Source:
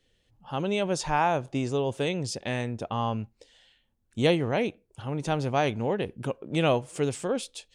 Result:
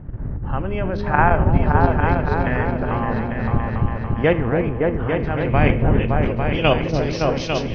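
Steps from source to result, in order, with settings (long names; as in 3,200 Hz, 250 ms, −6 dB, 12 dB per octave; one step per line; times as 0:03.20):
hearing-aid frequency compression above 2,600 Hz 1.5 to 1
wind on the microphone 110 Hz −30 dBFS
output level in coarse steps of 11 dB
low-pass filter sweep 1,700 Hz → 5,500 Hz, 0:05.11–0:07.66
echo whose low-pass opens from repeat to repeat 283 ms, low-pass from 400 Hz, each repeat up 2 octaves, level 0 dB
four-comb reverb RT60 0.72 s, combs from 28 ms, DRR 14 dB
level +7.5 dB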